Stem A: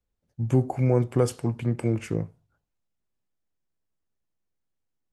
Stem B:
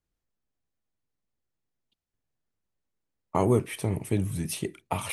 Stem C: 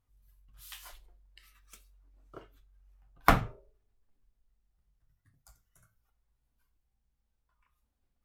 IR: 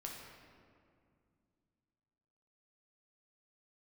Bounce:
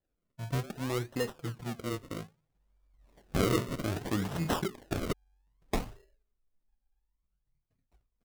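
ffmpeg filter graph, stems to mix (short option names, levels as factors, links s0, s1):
-filter_complex "[0:a]acrusher=samples=9:mix=1:aa=0.000001:lfo=1:lforange=9:lforate=3.9,acontrast=62,volume=0.237[s0];[1:a]highshelf=f=5200:g=10.5,bandreject=f=60:t=h:w=6,bandreject=f=120:t=h:w=6,bandreject=f=180:t=h:w=6,bandreject=f=240:t=h:w=6,bandreject=f=300:t=h:w=6,bandreject=f=360:t=h:w=6,bandreject=f=420:t=h:w=6,volume=1.06[s1];[2:a]highshelf=f=2300:g=-11.5,adelay=2450,volume=0.668[s2];[s0][s1][s2]amix=inputs=3:normalize=0,flanger=delay=2.3:depth=4.5:regen=18:speed=1:shape=triangular,acrusher=samples=37:mix=1:aa=0.000001:lfo=1:lforange=37:lforate=0.62"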